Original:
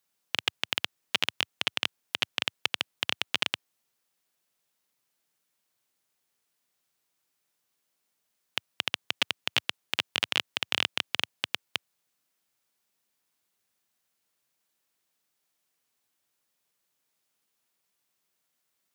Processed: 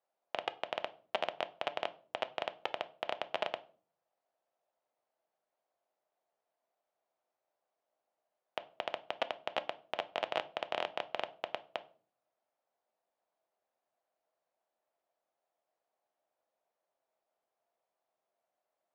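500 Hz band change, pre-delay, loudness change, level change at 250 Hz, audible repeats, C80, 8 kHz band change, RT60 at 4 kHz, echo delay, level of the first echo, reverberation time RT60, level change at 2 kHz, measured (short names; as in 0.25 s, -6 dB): +6.5 dB, 6 ms, -9.5 dB, -7.0 dB, none, 24.0 dB, under -20 dB, 0.30 s, none, none, 0.45 s, -11.0 dB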